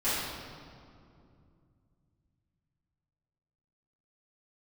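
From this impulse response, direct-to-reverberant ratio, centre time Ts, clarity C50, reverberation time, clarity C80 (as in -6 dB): -16.0 dB, 123 ms, -2.5 dB, 2.5 s, 0.0 dB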